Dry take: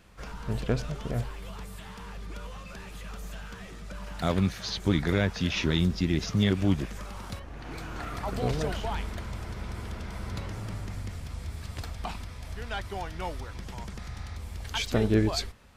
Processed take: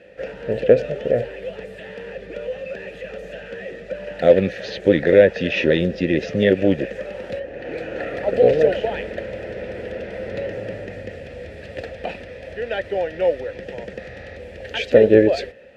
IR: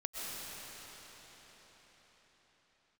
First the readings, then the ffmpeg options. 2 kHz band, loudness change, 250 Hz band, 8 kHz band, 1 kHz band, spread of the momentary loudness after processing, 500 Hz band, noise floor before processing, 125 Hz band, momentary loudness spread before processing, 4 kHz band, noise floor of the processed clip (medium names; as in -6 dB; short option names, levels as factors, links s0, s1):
+9.5 dB, +11.5 dB, +6.5 dB, no reading, +4.0 dB, 19 LU, +18.0 dB, -43 dBFS, -0.5 dB, 16 LU, +2.0 dB, -38 dBFS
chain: -filter_complex "[0:a]asplit=3[s0][s1][s2];[s0]bandpass=f=530:t=q:w=8,volume=1[s3];[s1]bandpass=f=1840:t=q:w=8,volume=0.501[s4];[s2]bandpass=f=2480:t=q:w=8,volume=0.355[s5];[s3][s4][s5]amix=inputs=3:normalize=0,apsyclip=25.1,tiltshelf=f=880:g=4.5,volume=0.596"